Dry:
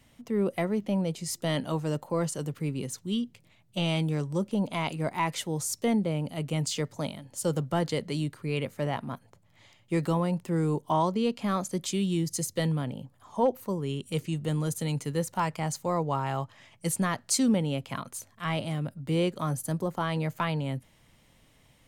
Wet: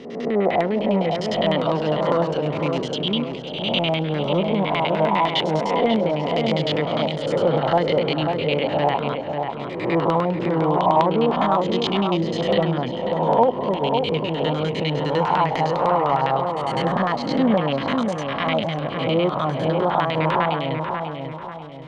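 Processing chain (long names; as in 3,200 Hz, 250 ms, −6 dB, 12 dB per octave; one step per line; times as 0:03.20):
peak hold with a rise ahead of every peak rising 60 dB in 1.01 s
treble cut that deepens with the level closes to 2,000 Hz, closed at −21.5 dBFS
low-shelf EQ 170 Hz −10 dB
in parallel at +2 dB: brickwall limiter −20.5 dBFS, peak gain reduction 8 dB
on the sum: auto-filter low-pass square 9.9 Hz 800–3,600 Hz
on a send: feedback echo with a low-pass in the loop 541 ms, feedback 45%, low-pass 2,200 Hz, level −5 dB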